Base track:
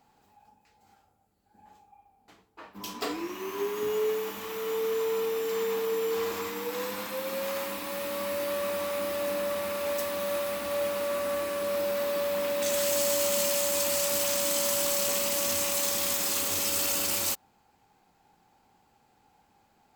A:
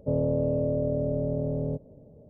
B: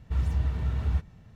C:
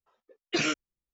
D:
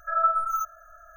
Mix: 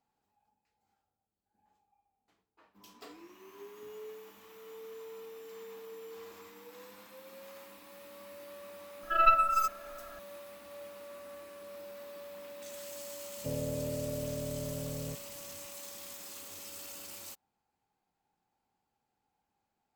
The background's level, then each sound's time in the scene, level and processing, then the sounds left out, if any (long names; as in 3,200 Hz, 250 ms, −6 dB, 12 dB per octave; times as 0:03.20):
base track −18 dB
0:09.03: mix in D −1 dB + stylus tracing distortion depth 0.09 ms
0:13.38: mix in A −10 dB + notch filter 390 Hz, Q 6.3
not used: B, C